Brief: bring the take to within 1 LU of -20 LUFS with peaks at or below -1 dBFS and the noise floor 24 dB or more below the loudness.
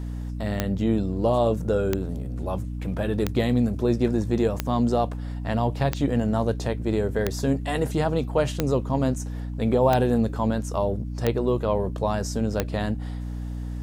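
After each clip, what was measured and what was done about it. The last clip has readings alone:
clicks 10; hum 60 Hz; harmonics up to 300 Hz; hum level -29 dBFS; loudness -25.0 LUFS; peak -6.5 dBFS; loudness target -20.0 LUFS
-> de-click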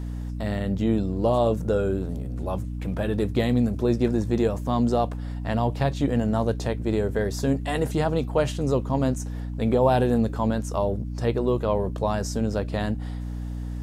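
clicks 0; hum 60 Hz; harmonics up to 300 Hz; hum level -29 dBFS
-> notches 60/120/180/240/300 Hz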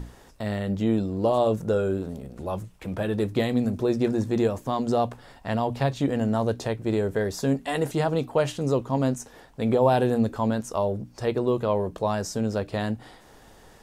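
hum none; loudness -26.0 LUFS; peak -8.0 dBFS; loudness target -20.0 LUFS
-> gain +6 dB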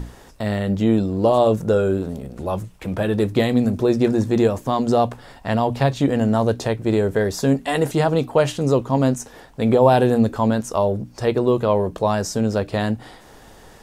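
loudness -20.0 LUFS; peak -2.0 dBFS; noise floor -46 dBFS

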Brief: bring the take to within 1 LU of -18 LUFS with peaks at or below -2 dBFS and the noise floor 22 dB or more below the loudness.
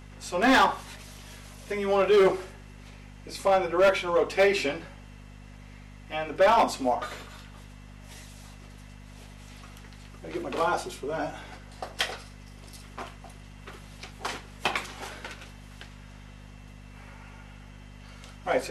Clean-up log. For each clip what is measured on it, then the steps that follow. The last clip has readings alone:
clipped 0.9%; flat tops at -15.5 dBFS; hum 50 Hz; harmonics up to 250 Hz; hum level -45 dBFS; loudness -26.0 LUFS; peak -15.5 dBFS; loudness target -18.0 LUFS
-> clip repair -15.5 dBFS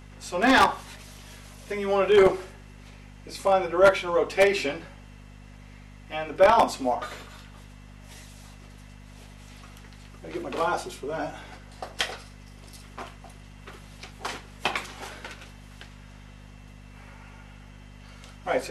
clipped 0.0%; hum 50 Hz; harmonics up to 250 Hz; hum level -45 dBFS
-> de-hum 50 Hz, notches 5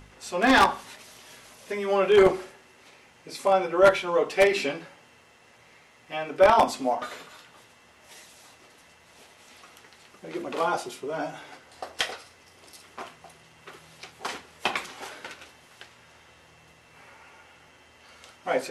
hum none; loudness -24.5 LUFS; peak -6.5 dBFS; loudness target -18.0 LUFS
-> gain +6.5 dB; limiter -2 dBFS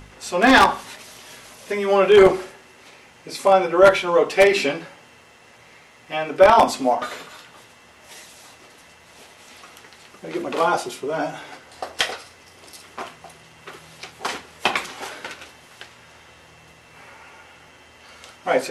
loudness -18.5 LUFS; peak -2.0 dBFS; noise floor -50 dBFS

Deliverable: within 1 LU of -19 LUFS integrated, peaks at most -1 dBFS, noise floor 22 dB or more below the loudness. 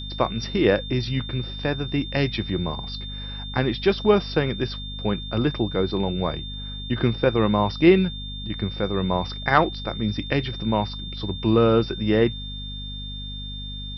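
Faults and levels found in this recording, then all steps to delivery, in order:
hum 50 Hz; harmonics up to 250 Hz; hum level -33 dBFS; steady tone 3600 Hz; tone level -35 dBFS; loudness -24.0 LUFS; peak -3.5 dBFS; loudness target -19.0 LUFS
-> de-hum 50 Hz, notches 5; notch 3600 Hz, Q 30; gain +5 dB; limiter -1 dBFS

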